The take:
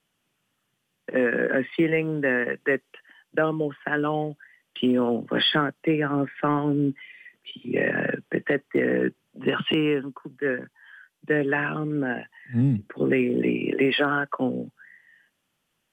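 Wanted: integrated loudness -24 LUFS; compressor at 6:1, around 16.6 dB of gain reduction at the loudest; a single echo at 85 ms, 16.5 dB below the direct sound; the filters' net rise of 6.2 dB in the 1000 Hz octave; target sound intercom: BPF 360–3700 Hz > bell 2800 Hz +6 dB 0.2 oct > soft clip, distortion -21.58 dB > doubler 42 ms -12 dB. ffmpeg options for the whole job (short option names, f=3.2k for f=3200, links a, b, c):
-filter_complex "[0:a]equalizer=f=1k:t=o:g=8.5,acompressor=threshold=-35dB:ratio=6,highpass=360,lowpass=3.7k,equalizer=f=2.8k:t=o:w=0.2:g=6,aecho=1:1:85:0.15,asoftclip=threshold=-26.5dB,asplit=2[a][b];[b]adelay=42,volume=-12dB[c];[a][c]amix=inputs=2:normalize=0,volume=16.5dB"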